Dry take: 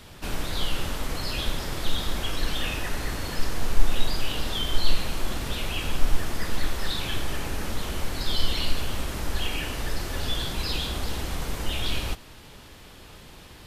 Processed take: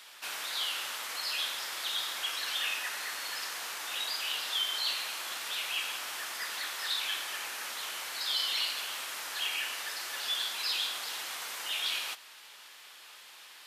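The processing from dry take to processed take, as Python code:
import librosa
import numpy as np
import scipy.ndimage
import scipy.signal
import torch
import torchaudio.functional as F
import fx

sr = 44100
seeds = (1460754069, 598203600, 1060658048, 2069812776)

y = scipy.signal.sosfilt(scipy.signal.butter(2, 1200.0, 'highpass', fs=sr, output='sos'), x)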